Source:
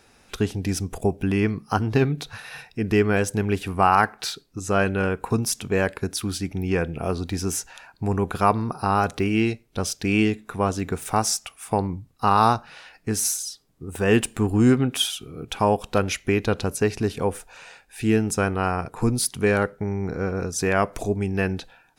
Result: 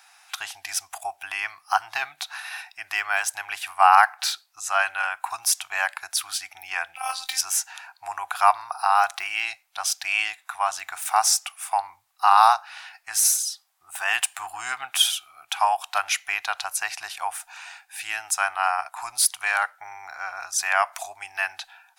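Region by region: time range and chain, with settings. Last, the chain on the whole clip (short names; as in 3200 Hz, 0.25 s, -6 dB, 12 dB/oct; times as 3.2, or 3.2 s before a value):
6.96–7.41 high shelf 2400 Hz +11.5 dB + doubler 23 ms -9.5 dB + robotiser 261 Hz
whole clip: elliptic high-pass 740 Hz, stop band 40 dB; high shelf 11000 Hz +5 dB; gain +4 dB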